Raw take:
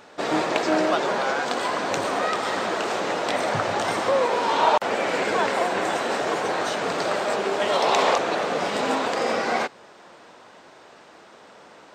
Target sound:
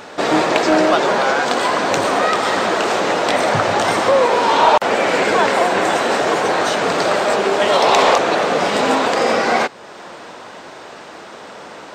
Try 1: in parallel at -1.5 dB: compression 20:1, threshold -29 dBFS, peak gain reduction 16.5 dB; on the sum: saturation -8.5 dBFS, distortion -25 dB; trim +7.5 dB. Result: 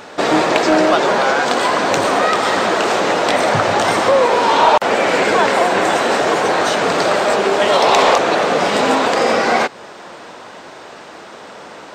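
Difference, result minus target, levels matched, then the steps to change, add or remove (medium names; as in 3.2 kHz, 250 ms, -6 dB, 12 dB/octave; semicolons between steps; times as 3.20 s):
compression: peak gain reduction -9.5 dB
change: compression 20:1, threshold -39 dBFS, peak gain reduction 26 dB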